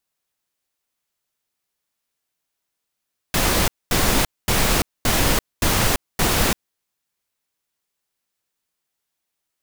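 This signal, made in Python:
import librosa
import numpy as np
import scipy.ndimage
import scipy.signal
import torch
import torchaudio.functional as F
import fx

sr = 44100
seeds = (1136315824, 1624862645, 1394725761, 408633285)

y = fx.noise_burst(sr, seeds[0], colour='pink', on_s=0.34, off_s=0.23, bursts=6, level_db=-18.0)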